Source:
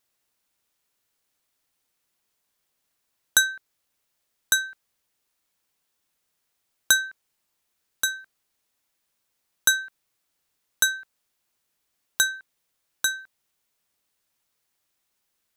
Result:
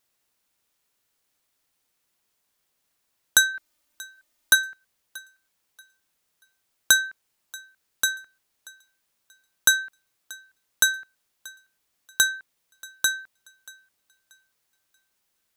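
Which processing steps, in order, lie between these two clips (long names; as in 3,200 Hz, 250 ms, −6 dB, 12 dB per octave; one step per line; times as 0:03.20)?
0:03.54–0:04.55: comb filter 3.3 ms, depth 88%
on a send: feedback echo with a high-pass in the loop 633 ms, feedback 28%, level −22.5 dB
on the sum: level +1.5 dB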